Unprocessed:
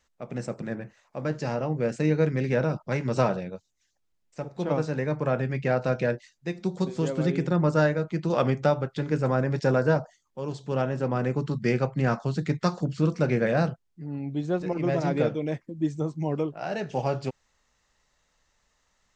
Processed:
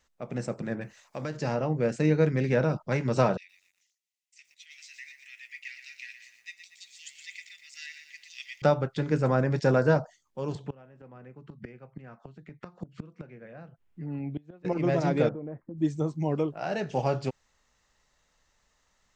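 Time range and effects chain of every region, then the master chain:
0.81–1.37 high shelf 2400 Hz +11 dB + compressor 4:1, threshold -30 dBFS
3.37–8.62 rippled Chebyshev high-pass 1900 Hz, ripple 3 dB + lo-fi delay 0.119 s, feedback 55%, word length 11-bit, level -8.5 dB
10.55–14.65 resonant high shelf 3500 Hz -8.5 dB, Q 1.5 + flipped gate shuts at -20 dBFS, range -26 dB + three-band squash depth 40%
15.29–15.78 LPF 1400 Hz 24 dB/oct + compressor 5:1, threshold -34 dBFS
whole clip: dry

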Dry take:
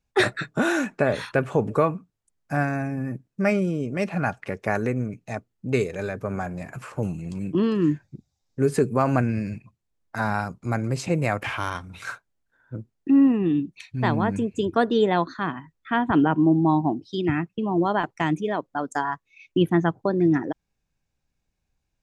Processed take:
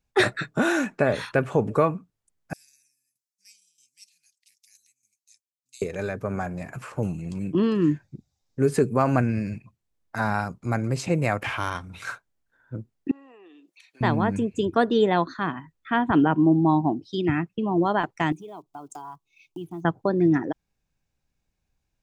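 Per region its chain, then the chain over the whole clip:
2.53–5.82 inverse Chebyshev high-pass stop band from 1400 Hz, stop band 60 dB + tremolo saw down 1.6 Hz, depth 75%
13.11–14.01 HPF 480 Hz 24 dB/oct + high shelf 7800 Hz +5.5 dB + compressor 4:1, threshold -51 dBFS
18.32–19.85 block floating point 7-bit + compressor 3:1, threshold -36 dBFS + fixed phaser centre 350 Hz, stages 8
whole clip: dry

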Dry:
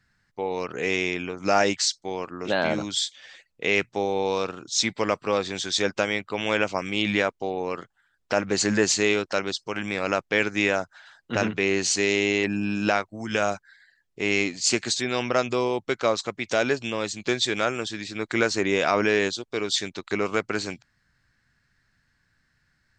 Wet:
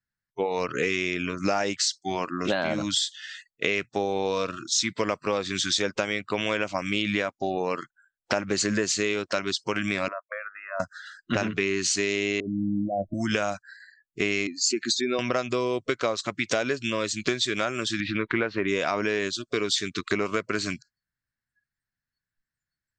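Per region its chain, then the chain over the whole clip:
10.08–10.8 compressor 5:1, threshold -29 dBFS + Butterworth band-pass 910 Hz, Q 0.97 + expander -48 dBFS
12.4–13.14 steep low-pass 720 Hz 48 dB/oct + negative-ratio compressor -32 dBFS
14.47–15.19 spectral contrast raised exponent 1.8 + HPF 200 Hz
18–18.68 LPF 3000 Hz 24 dB/oct + upward compressor, threshold -28 dBFS
whole clip: spectral noise reduction 30 dB; compressor 6:1, threshold -30 dBFS; gain +7.5 dB

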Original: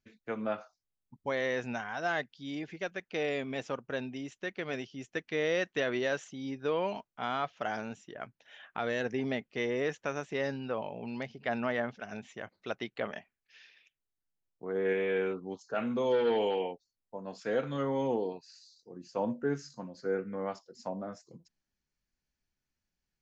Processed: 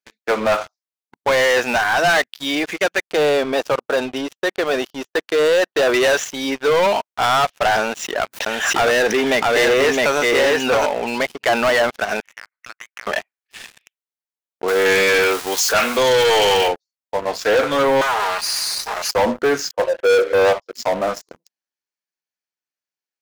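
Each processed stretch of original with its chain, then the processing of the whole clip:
3.01–5.94 LPF 4200 Hz + expander -57 dBFS + bell 2200 Hz -10.5 dB 0.64 oct
7.8–10.86 echo 0.662 s -3 dB + backwards sustainer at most 81 dB/s
12.2–13.07 Butterworth band-pass 1700 Hz, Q 1.5 + compressor 8:1, threshold -54 dBFS
14.68–16.68 zero-crossing step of -44.5 dBFS + tilt +3.5 dB/oct
18.01–19.11 minimum comb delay 4.8 ms + Bessel high-pass 1200 Hz, order 4 + fast leveller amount 70%
19.71–20.62 brick-wall FIR band-pass 300–3400 Hz + bell 530 Hz +13.5 dB 0.6 oct
whole clip: HPF 490 Hz 12 dB/oct; sample leveller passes 5; gain +6.5 dB

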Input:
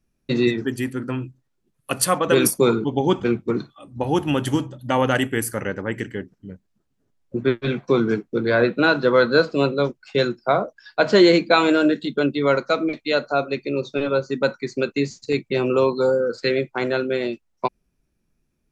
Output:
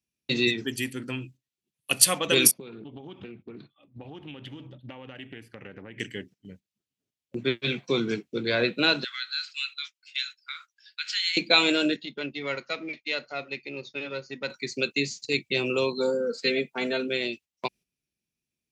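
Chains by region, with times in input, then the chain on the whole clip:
2.51–6 compressor 16:1, threshold -29 dBFS + air absorption 380 m + Doppler distortion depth 0.15 ms
9.04–11.37 steep high-pass 1400 Hz 48 dB/oct + compressor 2:1, threshold -32 dBFS
11.96–14.5 half-wave gain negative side -3 dB + rippled Chebyshev low-pass 6900 Hz, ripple 6 dB + high shelf 3900 Hz -6.5 dB
15.97–17.08 bell 3900 Hz -6 dB 2.4 oct + comb 4.4 ms, depth 86%
whole clip: gate -41 dBFS, range -9 dB; HPF 81 Hz; resonant high shelf 1900 Hz +10.5 dB, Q 1.5; gain -7.5 dB

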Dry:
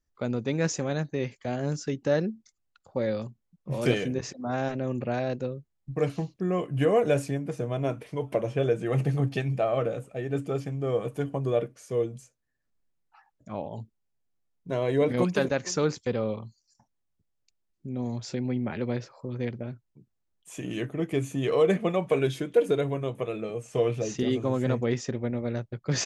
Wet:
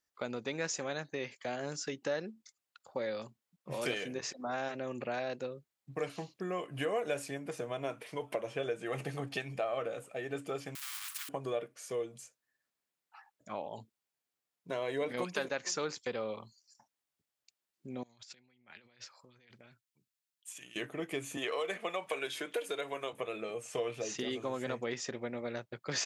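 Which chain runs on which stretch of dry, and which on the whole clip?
10.75–11.29 G.711 law mismatch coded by mu + steep high-pass 1200 Hz 72 dB/oct + spectral compressor 4:1
18.03–20.76 passive tone stack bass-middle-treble 5-5-5 + negative-ratio compressor -53 dBFS, ratio -0.5
21.37–23.13 HPF 640 Hz 6 dB/oct + three-band squash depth 70%
whole clip: HPF 970 Hz 6 dB/oct; bell 6100 Hz -2.5 dB 0.26 oct; compressor 2:1, threshold -41 dBFS; gain +4 dB

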